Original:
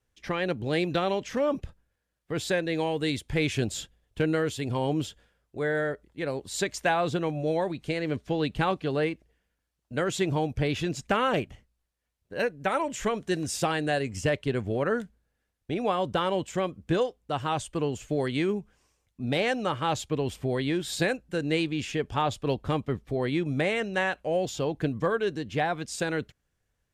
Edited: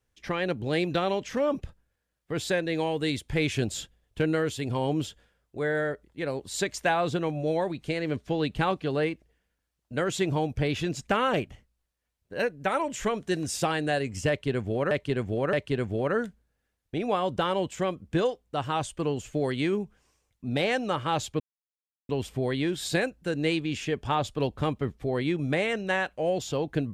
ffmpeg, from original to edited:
-filter_complex "[0:a]asplit=4[s0][s1][s2][s3];[s0]atrim=end=14.912[s4];[s1]atrim=start=14.288:end=14.912[s5];[s2]atrim=start=14.288:end=20.16,asetpts=PTS-STARTPTS,afade=t=out:st=5.868:d=0.004:c=hsin,apad=pad_dur=0.69[s6];[s3]atrim=start=20.16,asetpts=PTS-STARTPTS,afade=t=in:d=0.004:c=hsin[s7];[s4][s5]acrossfade=d=0.004:c1=hsin:c2=hsin[s8];[s6][s7]concat=n=2:v=0:a=1[s9];[s8][s9]acrossfade=d=0.004:c1=hsin:c2=hsin"

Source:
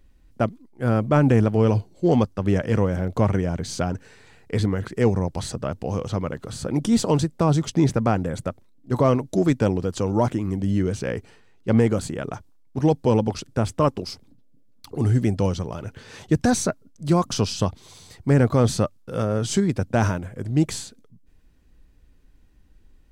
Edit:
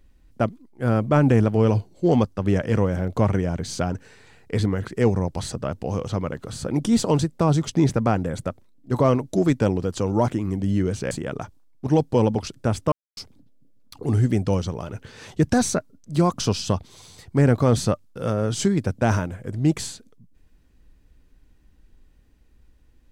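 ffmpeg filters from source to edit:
-filter_complex "[0:a]asplit=4[s0][s1][s2][s3];[s0]atrim=end=11.112[s4];[s1]atrim=start=12.028:end=13.84,asetpts=PTS-STARTPTS,afade=t=out:st=1.808:d=0.004:c=hsin[s5];[s2]atrim=start=13.84:end=14.09,asetpts=PTS-STARTPTS,volume=0[s6];[s3]atrim=start=14.09,asetpts=PTS-STARTPTS,afade=t=in:d=0.004:c=hsin[s7];[s5][s6][s7]concat=n=3:v=0:a=1[s8];[s4][s8]acrossfade=d=0.004:c1=hsin:c2=hsin"

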